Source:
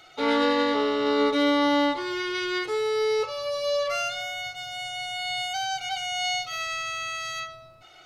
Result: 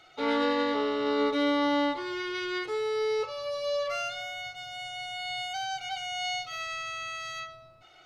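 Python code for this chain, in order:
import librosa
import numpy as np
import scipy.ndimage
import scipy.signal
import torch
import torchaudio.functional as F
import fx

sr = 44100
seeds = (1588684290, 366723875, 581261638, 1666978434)

y = fx.high_shelf(x, sr, hz=6500.0, db=-7.0)
y = y * librosa.db_to_amplitude(-4.0)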